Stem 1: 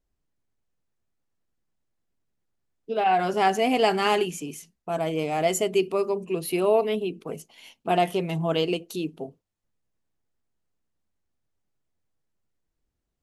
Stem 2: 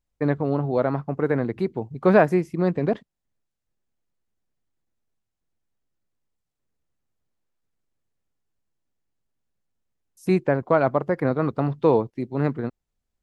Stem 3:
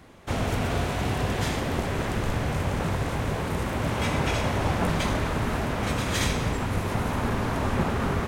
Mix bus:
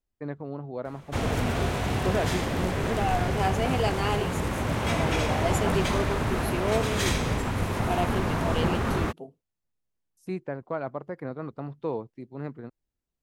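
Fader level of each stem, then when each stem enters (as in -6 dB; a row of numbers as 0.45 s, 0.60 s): -6.5 dB, -12.5 dB, -0.5 dB; 0.00 s, 0.00 s, 0.85 s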